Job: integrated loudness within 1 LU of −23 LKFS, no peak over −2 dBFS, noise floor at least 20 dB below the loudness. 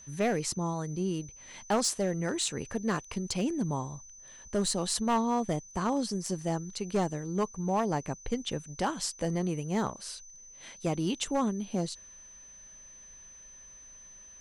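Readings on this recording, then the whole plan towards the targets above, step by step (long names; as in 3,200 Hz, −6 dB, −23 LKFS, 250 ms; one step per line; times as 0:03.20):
share of clipped samples 0.8%; peaks flattened at −21.5 dBFS; interfering tone 6,100 Hz; level of the tone −49 dBFS; integrated loudness −31.5 LKFS; sample peak −21.5 dBFS; target loudness −23.0 LKFS
→ clipped peaks rebuilt −21.5 dBFS
notch filter 6,100 Hz, Q 30
level +8.5 dB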